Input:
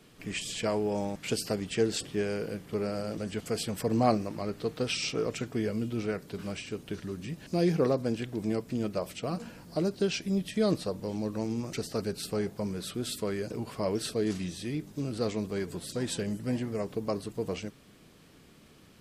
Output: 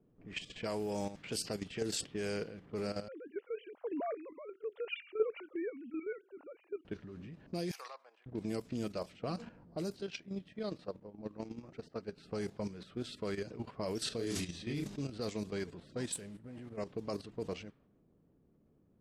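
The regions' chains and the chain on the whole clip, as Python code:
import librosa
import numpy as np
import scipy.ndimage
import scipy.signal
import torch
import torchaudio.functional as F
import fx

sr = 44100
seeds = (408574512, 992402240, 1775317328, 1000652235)

y = fx.chain(x, sr, fx.sine_speech(),
    fx.bandpass_edges(low_hz=310.0, high_hz=2900.0), at=(3.08, 6.85))
y = fx.chain(y, sr, fx.highpass(hz=930.0, slope=24),
    fx.peak_eq(hz=1500.0, db=-5.5, octaves=0.27), at=(7.71, 8.26))
y = fx.chain(y, sr, fx.low_shelf(hz=100.0, db=-7.5),
    fx.level_steps(step_db=11), at=(10.01, 12.18))
y = fx.chain(y, sr, fx.doubler(ms=35.0, db=-3.0),
    fx.sustainer(db_per_s=44.0), at=(14.04, 15.01))
y = fx.chain(y, sr, fx.high_shelf_res(hz=7300.0, db=9.5, q=3.0),
    fx.level_steps(step_db=9),
    fx.mod_noise(seeds[0], snr_db=17), at=(16.12, 16.77))
y = fx.env_lowpass(y, sr, base_hz=470.0, full_db=-25.5)
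y = fx.high_shelf(y, sr, hz=3300.0, db=9.0)
y = fx.level_steps(y, sr, step_db=11)
y = y * 10.0 ** (-3.5 / 20.0)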